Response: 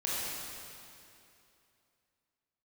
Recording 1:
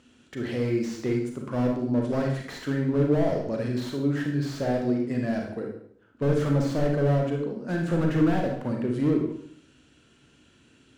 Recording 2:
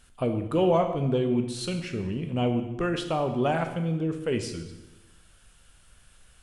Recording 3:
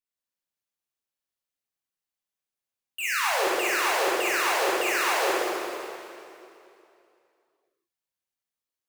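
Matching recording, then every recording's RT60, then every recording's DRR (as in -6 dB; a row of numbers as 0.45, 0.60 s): 3; 0.65, 1.0, 2.7 s; 1.0, 5.5, -7.5 dB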